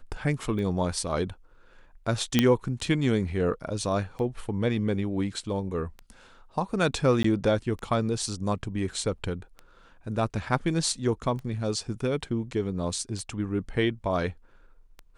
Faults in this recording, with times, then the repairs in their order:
scratch tick 33 1/3 rpm −26 dBFS
0:02.39: click −6 dBFS
0:07.23–0:07.24: drop-out 14 ms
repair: click removal
repair the gap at 0:07.23, 14 ms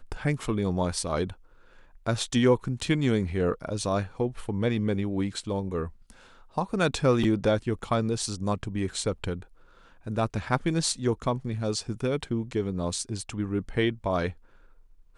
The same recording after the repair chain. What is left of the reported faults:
none of them is left

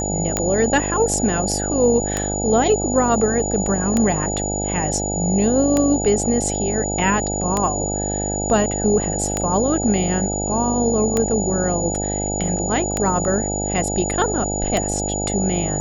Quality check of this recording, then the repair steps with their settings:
mains buzz 50 Hz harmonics 17 −25 dBFS
scratch tick 33 1/3 rpm −5 dBFS
whistle 6,900 Hz −25 dBFS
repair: click removal
hum removal 50 Hz, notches 17
notch filter 6,900 Hz, Q 30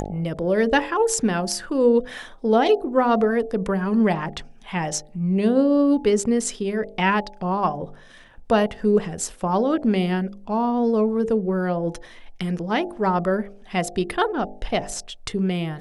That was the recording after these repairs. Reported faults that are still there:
none of them is left

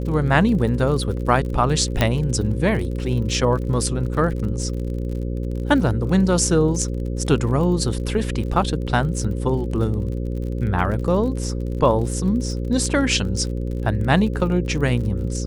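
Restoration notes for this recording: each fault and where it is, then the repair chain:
mains buzz 60 Hz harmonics 9 −25 dBFS
surface crackle 43 per second −30 dBFS
0:02.01: click −5 dBFS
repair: click removal
hum removal 60 Hz, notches 9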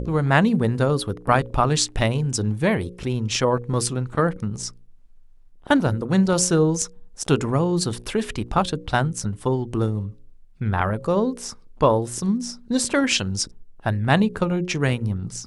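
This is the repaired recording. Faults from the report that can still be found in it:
0:02.01: click

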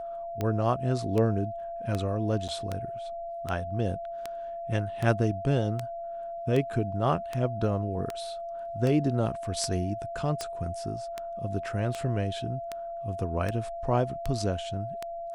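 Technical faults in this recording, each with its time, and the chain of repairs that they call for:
scratch tick 78 rpm −17 dBFS
whistle 680 Hz −34 dBFS
0:02.48–0:02.49: drop-out 7 ms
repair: click removal
notch filter 680 Hz, Q 30
repair the gap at 0:02.48, 7 ms

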